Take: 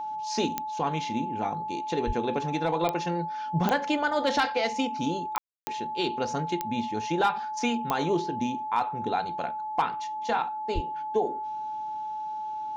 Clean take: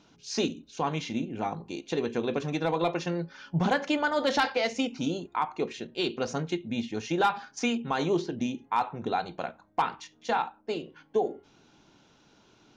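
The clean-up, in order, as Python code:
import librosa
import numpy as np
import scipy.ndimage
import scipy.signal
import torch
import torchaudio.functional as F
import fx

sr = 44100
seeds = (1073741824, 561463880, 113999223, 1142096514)

y = fx.fix_declick_ar(x, sr, threshold=10.0)
y = fx.notch(y, sr, hz=860.0, q=30.0)
y = fx.fix_deplosive(y, sr, at_s=(2.06, 10.74))
y = fx.fix_ambience(y, sr, seeds[0], print_start_s=11.98, print_end_s=12.48, start_s=5.38, end_s=5.67)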